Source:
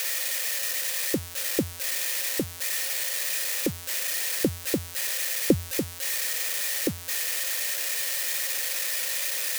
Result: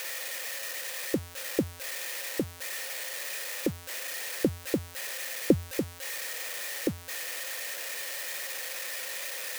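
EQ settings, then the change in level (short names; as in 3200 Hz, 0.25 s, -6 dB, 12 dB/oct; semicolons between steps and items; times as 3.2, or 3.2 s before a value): low shelf 230 Hz -3 dB; high shelf 2300 Hz -9.5 dB; 0.0 dB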